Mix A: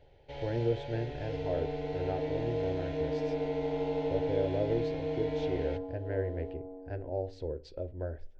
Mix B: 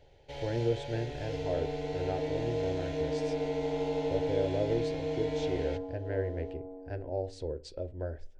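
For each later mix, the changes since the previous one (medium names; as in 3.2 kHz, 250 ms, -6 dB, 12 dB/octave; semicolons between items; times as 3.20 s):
master: remove distance through air 160 m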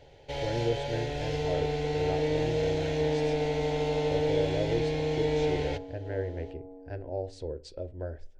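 first sound +7.5 dB; second sound: send -11.5 dB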